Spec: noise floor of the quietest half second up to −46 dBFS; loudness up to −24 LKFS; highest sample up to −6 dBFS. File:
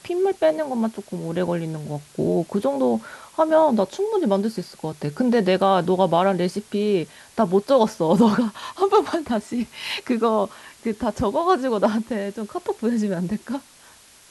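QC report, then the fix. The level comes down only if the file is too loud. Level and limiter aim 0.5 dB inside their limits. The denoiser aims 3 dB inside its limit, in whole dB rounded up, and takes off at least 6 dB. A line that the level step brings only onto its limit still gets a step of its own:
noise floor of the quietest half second −50 dBFS: in spec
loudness −22.0 LKFS: out of spec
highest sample −5.0 dBFS: out of spec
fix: level −2.5 dB

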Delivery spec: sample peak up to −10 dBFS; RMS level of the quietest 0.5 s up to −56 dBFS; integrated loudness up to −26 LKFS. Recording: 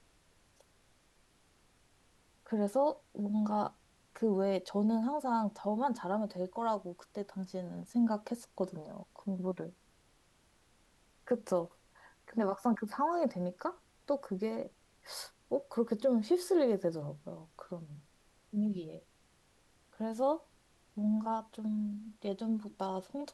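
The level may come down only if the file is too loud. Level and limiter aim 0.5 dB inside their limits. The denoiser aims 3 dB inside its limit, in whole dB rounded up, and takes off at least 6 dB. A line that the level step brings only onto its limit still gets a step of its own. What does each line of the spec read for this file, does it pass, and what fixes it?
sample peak −19.0 dBFS: in spec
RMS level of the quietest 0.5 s −68 dBFS: in spec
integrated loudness −35.0 LKFS: in spec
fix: no processing needed

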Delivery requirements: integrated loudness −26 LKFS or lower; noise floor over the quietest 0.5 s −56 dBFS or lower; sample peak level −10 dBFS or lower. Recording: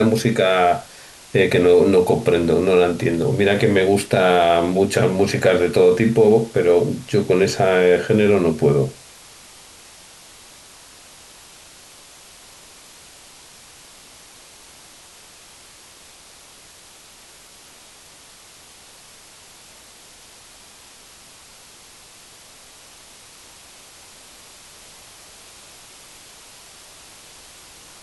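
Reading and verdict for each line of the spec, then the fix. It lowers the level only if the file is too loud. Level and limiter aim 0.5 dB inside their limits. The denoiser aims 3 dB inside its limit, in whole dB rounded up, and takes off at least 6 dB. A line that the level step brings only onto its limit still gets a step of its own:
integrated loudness −16.5 LKFS: out of spec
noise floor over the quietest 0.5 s −46 dBFS: out of spec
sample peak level −4.5 dBFS: out of spec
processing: broadband denoise 6 dB, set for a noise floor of −46 dBFS
level −10 dB

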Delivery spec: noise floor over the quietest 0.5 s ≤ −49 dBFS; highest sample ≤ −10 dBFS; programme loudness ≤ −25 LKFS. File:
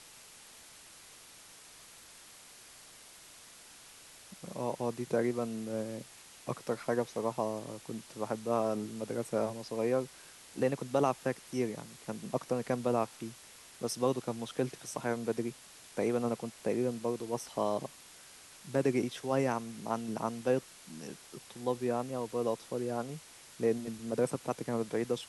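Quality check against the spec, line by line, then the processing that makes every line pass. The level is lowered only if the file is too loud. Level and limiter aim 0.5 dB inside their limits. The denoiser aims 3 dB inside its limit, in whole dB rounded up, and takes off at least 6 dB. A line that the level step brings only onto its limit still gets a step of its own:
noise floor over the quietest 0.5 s −55 dBFS: in spec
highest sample −16.0 dBFS: in spec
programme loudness −35.0 LKFS: in spec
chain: no processing needed

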